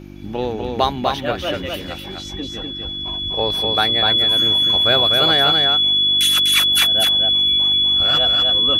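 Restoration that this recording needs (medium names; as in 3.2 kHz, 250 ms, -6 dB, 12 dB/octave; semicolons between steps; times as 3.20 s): de-hum 49.1 Hz, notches 7; band-stop 3.4 kHz, Q 30; inverse comb 248 ms -4 dB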